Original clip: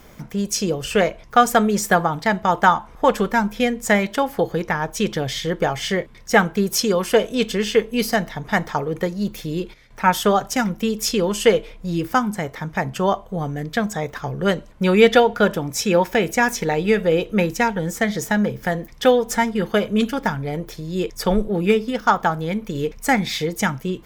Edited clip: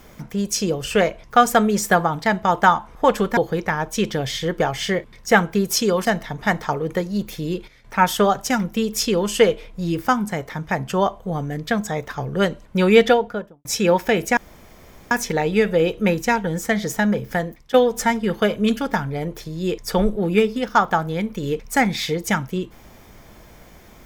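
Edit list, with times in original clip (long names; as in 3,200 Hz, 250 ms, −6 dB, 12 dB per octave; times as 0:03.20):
0:03.37–0:04.39: remove
0:07.07–0:08.11: remove
0:14.99–0:15.71: fade out and dull
0:16.43: splice in room tone 0.74 s
0:18.69–0:19.06: fade out, to −15.5 dB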